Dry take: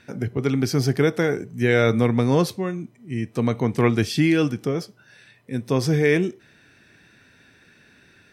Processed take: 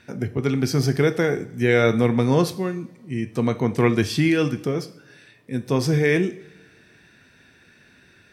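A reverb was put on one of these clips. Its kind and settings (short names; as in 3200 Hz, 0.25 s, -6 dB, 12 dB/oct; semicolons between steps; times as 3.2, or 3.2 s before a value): two-slope reverb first 0.52 s, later 1.9 s, from -18 dB, DRR 10 dB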